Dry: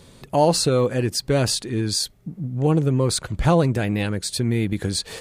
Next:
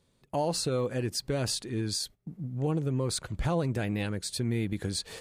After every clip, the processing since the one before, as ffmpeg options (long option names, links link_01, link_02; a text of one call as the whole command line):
ffmpeg -i in.wav -af "alimiter=limit=-12dB:level=0:latency=1:release=141,agate=range=-14dB:threshold=-37dB:ratio=16:detection=peak,volume=-8dB" out.wav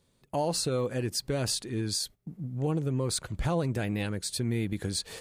ffmpeg -i in.wav -af "highshelf=frequency=8000:gain=4" out.wav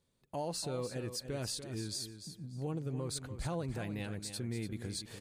ffmpeg -i in.wav -af "aecho=1:1:292|584|876:0.316|0.0696|0.0153,volume=-9dB" out.wav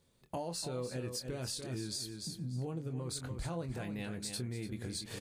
ffmpeg -i in.wav -filter_complex "[0:a]acompressor=threshold=-43dB:ratio=6,asplit=2[link_01][link_02];[link_02]adelay=24,volume=-8.5dB[link_03];[link_01][link_03]amix=inputs=2:normalize=0,volume=6dB" out.wav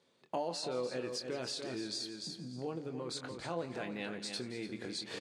ffmpeg -i in.wav -af "highpass=290,lowpass=5000,aecho=1:1:171|342|513|684:0.15|0.0733|0.0359|0.0176,volume=4dB" out.wav